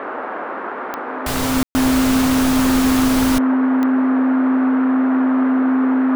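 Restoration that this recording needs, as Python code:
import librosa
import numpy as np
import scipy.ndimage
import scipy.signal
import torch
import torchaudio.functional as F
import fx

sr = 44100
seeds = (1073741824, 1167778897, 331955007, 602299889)

y = fx.fix_declick_ar(x, sr, threshold=10.0)
y = fx.notch(y, sr, hz=260.0, q=30.0)
y = fx.fix_ambience(y, sr, seeds[0], print_start_s=0.57, print_end_s=1.07, start_s=1.63, end_s=1.75)
y = fx.noise_reduce(y, sr, print_start_s=0.57, print_end_s=1.07, reduce_db=30.0)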